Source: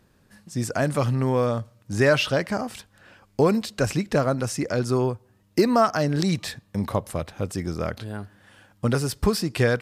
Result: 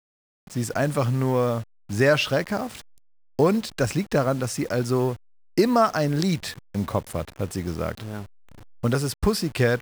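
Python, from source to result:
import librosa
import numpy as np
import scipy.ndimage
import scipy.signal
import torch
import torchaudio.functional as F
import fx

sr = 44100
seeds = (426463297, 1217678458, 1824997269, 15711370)

y = fx.delta_hold(x, sr, step_db=-38.5)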